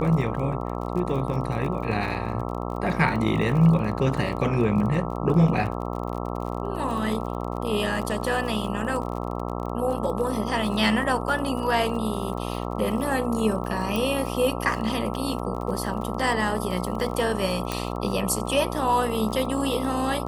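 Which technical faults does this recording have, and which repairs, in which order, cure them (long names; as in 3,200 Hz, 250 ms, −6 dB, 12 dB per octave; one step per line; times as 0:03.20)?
mains buzz 60 Hz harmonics 22 −30 dBFS
surface crackle 43 per second −32 dBFS
0:13.96: click
0:17.72: click −11 dBFS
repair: click removal
hum removal 60 Hz, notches 22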